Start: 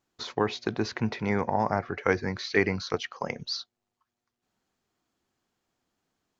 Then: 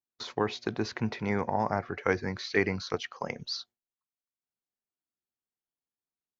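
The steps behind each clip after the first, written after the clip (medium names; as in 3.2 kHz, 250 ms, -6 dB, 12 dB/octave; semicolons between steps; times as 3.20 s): gate with hold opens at -37 dBFS; trim -2.5 dB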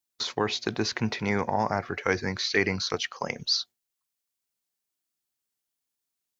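treble shelf 2.7 kHz +10 dB; in parallel at -1 dB: peak limiter -16.5 dBFS, peak gain reduction 8.5 dB; on the sum: trim -3 dB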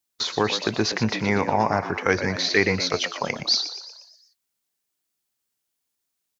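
frequency-shifting echo 119 ms, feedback 53%, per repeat +80 Hz, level -11 dB; trim +4.5 dB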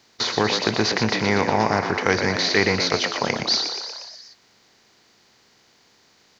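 spectral levelling over time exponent 0.6; trim -1.5 dB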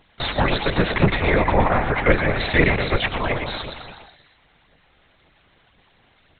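phaser 1.9 Hz, delay 2.9 ms, feedback 48%; LPC vocoder at 8 kHz whisper; trim +1.5 dB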